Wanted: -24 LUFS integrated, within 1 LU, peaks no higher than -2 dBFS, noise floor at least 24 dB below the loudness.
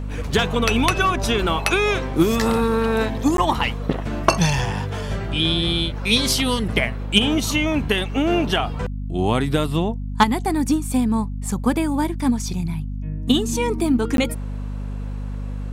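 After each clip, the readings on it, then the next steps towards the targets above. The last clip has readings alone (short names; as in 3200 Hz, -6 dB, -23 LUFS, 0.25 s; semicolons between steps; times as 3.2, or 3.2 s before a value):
dropouts 2; longest dropout 12 ms; hum 50 Hz; harmonics up to 250 Hz; hum level -25 dBFS; loudness -21.0 LUFS; peak -3.0 dBFS; loudness target -24.0 LUFS
-> interpolate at 3.37/14.17, 12 ms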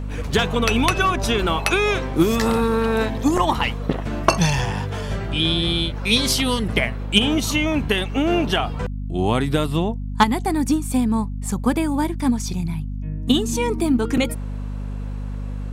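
dropouts 0; hum 50 Hz; harmonics up to 250 Hz; hum level -25 dBFS
-> de-hum 50 Hz, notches 5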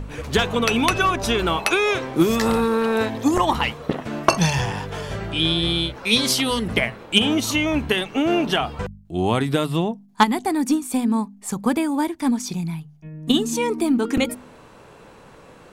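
hum none; loudness -21.0 LUFS; peak -3.5 dBFS; loudness target -24.0 LUFS
-> gain -3 dB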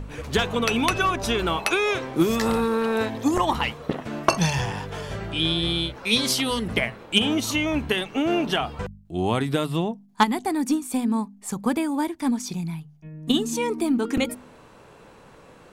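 loudness -24.0 LUFS; peak -6.5 dBFS; noise floor -50 dBFS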